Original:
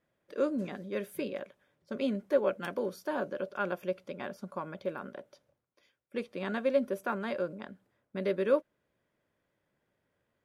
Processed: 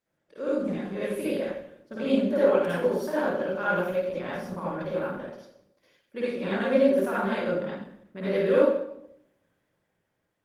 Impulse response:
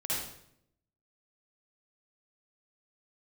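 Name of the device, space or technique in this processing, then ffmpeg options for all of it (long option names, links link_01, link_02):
far-field microphone of a smart speaker: -filter_complex "[1:a]atrim=start_sample=2205[link_01];[0:a][link_01]afir=irnorm=-1:irlink=0,highpass=frequency=88:poles=1,dynaudnorm=framelen=130:gausssize=13:maxgain=5.5dB,volume=-3dB" -ar 48000 -c:a libopus -b:a 20k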